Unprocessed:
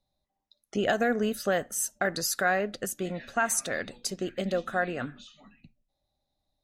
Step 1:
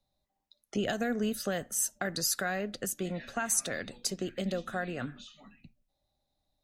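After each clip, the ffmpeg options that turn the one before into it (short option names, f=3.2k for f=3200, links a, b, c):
-filter_complex "[0:a]acrossover=split=250|3000[a][b][c];[b]acompressor=threshold=-38dB:ratio=2[d];[a][d][c]amix=inputs=3:normalize=0"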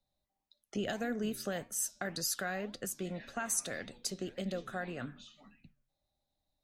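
-af "flanger=delay=4.7:depth=6.9:regen=-89:speed=1.8:shape=sinusoidal"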